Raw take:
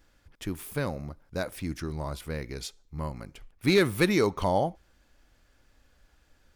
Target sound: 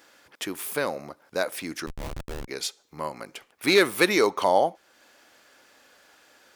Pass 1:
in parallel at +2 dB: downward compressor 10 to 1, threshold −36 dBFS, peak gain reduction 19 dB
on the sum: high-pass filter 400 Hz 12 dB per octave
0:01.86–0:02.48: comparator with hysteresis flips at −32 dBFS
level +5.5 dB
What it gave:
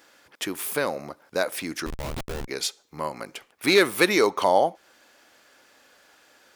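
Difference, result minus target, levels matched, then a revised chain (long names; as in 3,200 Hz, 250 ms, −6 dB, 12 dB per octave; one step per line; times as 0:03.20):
downward compressor: peak gain reduction −8 dB
in parallel at +2 dB: downward compressor 10 to 1, threshold −45 dBFS, peak gain reduction 27 dB
on the sum: high-pass filter 400 Hz 12 dB per octave
0:01.86–0:02.48: comparator with hysteresis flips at −32 dBFS
level +5.5 dB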